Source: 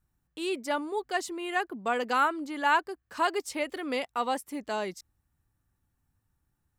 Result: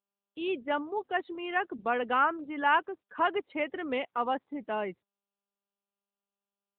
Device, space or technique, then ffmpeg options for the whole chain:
mobile call with aggressive noise cancelling: -filter_complex "[0:a]asettb=1/sr,asplit=3[a][b][c];[a]atrim=end=3.424[d];[b]atrim=start=3.42:end=3.84,asetpts=PTS-STARTPTS,afade=t=in:d=0.004:c=qsin,afade=t=out:st=0.416:d=0.004:c=qsin,equalizer=f=1.6k:t=o:w=0.87:g=2[e];[c]atrim=start=3.836[f];[d][e]acrossfade=d=0.004:c1=hsin:c2=qsin[g];[g][f]acrossfade=d=0.004:c1=qsin:c2=hsin,highpass=100,afftdn=nr=35:nf=-44" -ar 8000 -c:a libopencore_amrnb -b:a 10200

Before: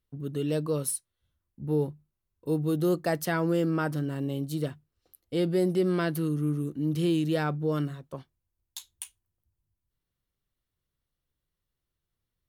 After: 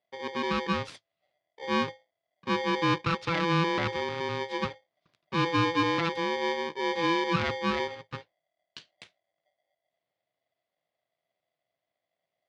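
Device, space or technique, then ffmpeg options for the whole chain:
ring modulator pedal into a guitar cabinet: -af "aeval=exprs='val(0)*sgn(sin(2*PI*670*n/s))':c=same,highpass=83,equalizer=f=110:t=q:w=4:g=8,equalizer=f=160:t=q:w=4:g=6,equalizer=f=820:t=q:w=4:g=-6,lowpass=f=4.4k:w=0.5412,lowpass=f=4.4k:w=1.3066"

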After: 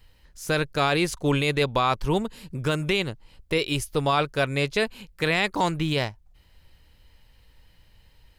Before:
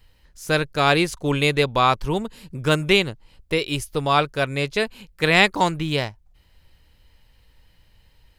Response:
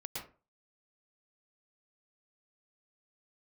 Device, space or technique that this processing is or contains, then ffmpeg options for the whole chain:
stacked limiters: -af "alimiter=limit=-8dB:level=0:latency=1:release=178,alimiter=limit=-11.5dB:level=0:latency=1:release=19"

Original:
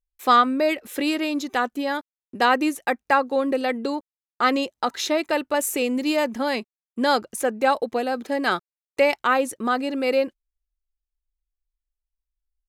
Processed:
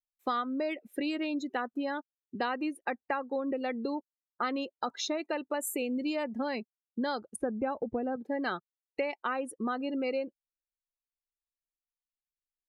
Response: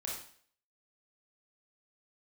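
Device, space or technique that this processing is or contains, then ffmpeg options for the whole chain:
ASMR close-microphone chain: -filter_complex "[0:a]asettb=1/sr,asplit=3[a][b][c];[a]atrim=end=7.364[d];[b]atrim=start=7.36:end=8.16,asetpts=PTS-STARTPTS,afade=t=in:d=0.004:c=qsin,afade=t=out:st=0.796:d=0.004:c=qsin,aemphasis=mode=reproduction:type=riaa[e];[c]atrim=start=8.156[f];[d][e]acrossfade=d=0.004:c1=hsin:c2=qsin[g];[g][f]acrossfade=d=0.004:c1=qsin:c2=hsin,afftdn=nr=26:nf=-31,lowshelf=f=200:g=5.5,acompressor=threshold=-24dB:ratio=5,highshelf=f=10k:g=3.5,volume=-5.5dB"

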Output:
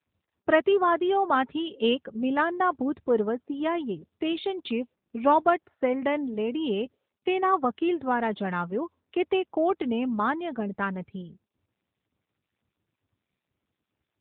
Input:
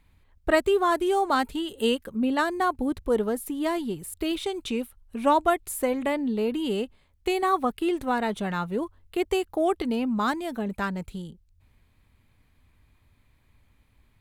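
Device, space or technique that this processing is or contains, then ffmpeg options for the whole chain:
mobile call with aggressive noise cancelling: -af "highpass=f=140:p=1,afftdn=nr=31:nf=-48,volume=1dB" -ar 8000 -c:a libopencore_amrnb -b:a 10200

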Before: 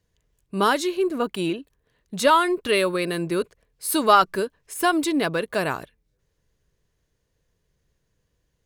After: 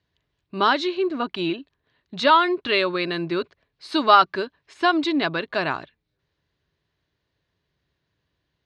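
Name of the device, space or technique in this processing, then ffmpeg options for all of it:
guitar cabinet: -af "highpass=100,equalizer=f=130:t=q:w=4:g=-4,equalizer=f=200:t=q:w=4:g=-7,equalizer=f=480:t=q:w=4:g=-10,equalizer=f=4k:t=q:w=4:g=4,lowpass=f=4.5k:w=0.5412,lowpass=f=4.5k:w=1.3066,volume=2dB"

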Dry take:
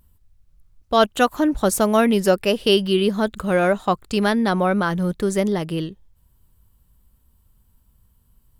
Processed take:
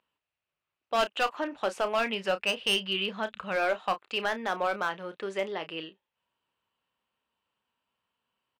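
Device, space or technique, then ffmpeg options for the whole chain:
megaphone: -filter_complex "[0:a]asplit=3[a][b][c];[a]afade=t=out:st=1.98:d=0.02[d];[b]asubboost=boost=11.5:cutoff=120,afade=t=in:st=1.98:d=0.02,afade=t=out:st=3.55:d=0.02[e];[c]afade=t=in:st=3.55:d=0.02[f];[d][e][f]amix=inputs=3:normalize=0,highpass=570,lowpass=3k,equalizer=f=2.7k:t=o:w=0.48:g=9,asoftclip=type=hard:threshold=-15dB,asplit=2[g][h];[h]adelay=31,volume=-11.5dB[i];[g][i]amix=inputs=2:normalize=0,volume=-5.5dB"

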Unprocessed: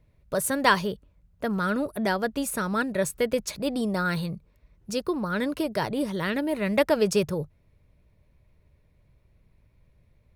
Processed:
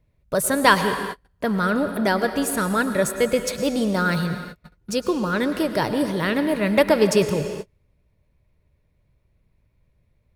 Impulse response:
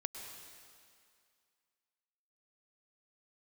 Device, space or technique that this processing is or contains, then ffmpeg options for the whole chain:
keyed gated reverb: -filter_complex "[0:a]asplit=3[a][b][c];[1:a]atrim=start_sample=2205[d];[b][d]afir=irnorm=-1:irlink=0[e];[c]apad=whole_len=456563[f];[e][f]sidechaingate=range=-42dB:threshold=-52dB:ratio=16:detection=peak,volume=5.5dB[g];[a][g]amix=inputs=2:normalize=0,volume=-3dB"

